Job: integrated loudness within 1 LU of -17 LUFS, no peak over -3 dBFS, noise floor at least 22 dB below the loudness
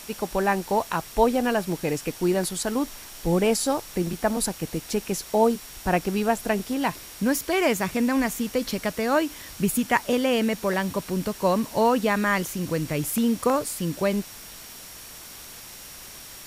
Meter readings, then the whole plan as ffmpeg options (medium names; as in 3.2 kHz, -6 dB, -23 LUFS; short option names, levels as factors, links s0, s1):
steady tone 5.6 kHz; tone level -50 dBFS; noise floor -43 dBFS; noise floor target -47 dBFS; loudness -25.0 LUFS; peak level -7.5 dBFS; loudness target -17.0 LUFS
-> -af "bandreject=f=5600:w=30"
-af "afftdn=nr=6:nf=-43"
-af "volume=2.51,alimiter=limit=0.708:level=0:latency=1"